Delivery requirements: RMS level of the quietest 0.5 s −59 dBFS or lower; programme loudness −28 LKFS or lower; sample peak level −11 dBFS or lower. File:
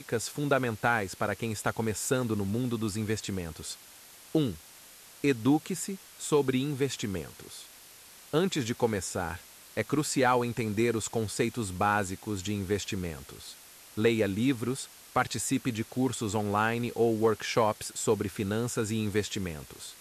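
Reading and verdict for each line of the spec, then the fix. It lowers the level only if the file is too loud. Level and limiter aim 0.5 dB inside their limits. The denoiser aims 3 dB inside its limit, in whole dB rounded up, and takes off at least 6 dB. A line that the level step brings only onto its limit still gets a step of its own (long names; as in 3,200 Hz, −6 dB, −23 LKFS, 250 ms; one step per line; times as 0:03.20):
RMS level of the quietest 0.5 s −52 dBFS: out of spec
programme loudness −30.0 LKFS: in spec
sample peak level −13.5 dBFS: in spec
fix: broadband denoise 10 dB, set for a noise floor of −52 dBFS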